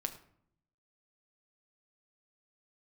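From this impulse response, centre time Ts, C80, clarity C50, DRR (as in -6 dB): 9 ms, 15.0 dB, 12.5 dB, 5.5 dB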